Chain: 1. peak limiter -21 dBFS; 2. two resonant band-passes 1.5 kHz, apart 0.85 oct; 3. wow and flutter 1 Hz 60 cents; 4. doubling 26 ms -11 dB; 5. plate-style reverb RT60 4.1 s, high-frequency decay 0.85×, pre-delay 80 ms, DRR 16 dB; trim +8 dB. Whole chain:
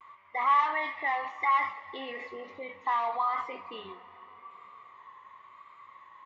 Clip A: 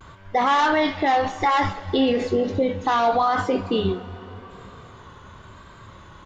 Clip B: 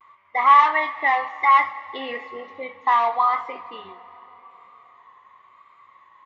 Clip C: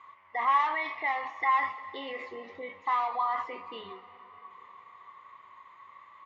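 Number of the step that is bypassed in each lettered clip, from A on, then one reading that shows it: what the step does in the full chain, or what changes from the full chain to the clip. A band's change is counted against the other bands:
2, 250 Hz band +15.0 dB; 1, mean gain reduction 3.0 dB; 3, momentary loudness spread change -3 LU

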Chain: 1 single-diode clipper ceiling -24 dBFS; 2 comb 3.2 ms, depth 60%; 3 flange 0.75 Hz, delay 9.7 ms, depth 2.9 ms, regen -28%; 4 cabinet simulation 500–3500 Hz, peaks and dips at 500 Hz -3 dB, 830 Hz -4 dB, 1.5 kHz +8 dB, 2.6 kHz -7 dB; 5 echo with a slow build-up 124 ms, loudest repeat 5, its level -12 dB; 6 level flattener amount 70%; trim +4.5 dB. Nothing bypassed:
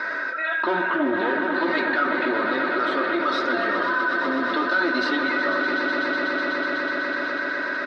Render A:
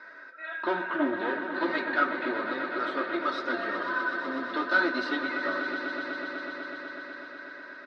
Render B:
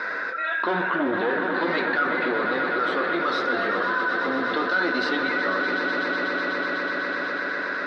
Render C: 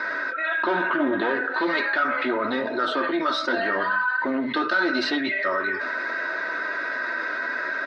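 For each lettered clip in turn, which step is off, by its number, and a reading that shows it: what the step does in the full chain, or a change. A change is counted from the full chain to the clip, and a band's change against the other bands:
6, crest factor change +4.5 dB; 2, 250 Hz band -2.0 dB; 5, momentary loudness spread change +1 LU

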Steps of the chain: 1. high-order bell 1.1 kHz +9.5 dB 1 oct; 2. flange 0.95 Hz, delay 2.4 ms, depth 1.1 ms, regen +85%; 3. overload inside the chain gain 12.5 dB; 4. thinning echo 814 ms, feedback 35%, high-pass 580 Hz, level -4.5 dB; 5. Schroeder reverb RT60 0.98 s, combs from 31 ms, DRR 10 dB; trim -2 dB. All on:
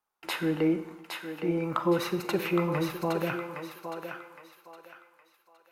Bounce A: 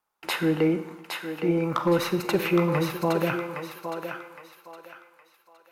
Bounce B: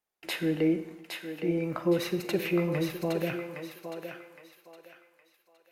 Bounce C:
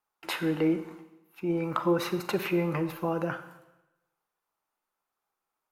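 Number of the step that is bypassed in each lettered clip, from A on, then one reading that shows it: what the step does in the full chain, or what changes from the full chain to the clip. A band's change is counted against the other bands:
2, loudness change +4.0 LU; 1, 1 kHz band -8.0 dB; 4, echo-to-direct -3.5 dB to -10.0 dB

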